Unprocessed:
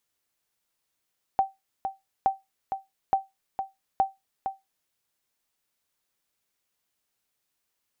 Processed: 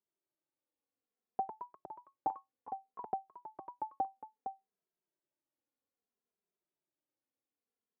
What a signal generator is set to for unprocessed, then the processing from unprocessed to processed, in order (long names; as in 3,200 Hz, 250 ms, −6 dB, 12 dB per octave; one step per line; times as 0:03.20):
ping with an echo 776 Hz, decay 0.19 s, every 0.87 s, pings 4, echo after 0.46 s, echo −8 dB −13.5 dBFS
resonant band-pass 330 Hz, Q 1.2
delay with pitch and tempo change per echo 253 ms, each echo +2 semitones, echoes 3, each echo −6 dB
barber-pole flanger 2.6 ms −0.61 Hz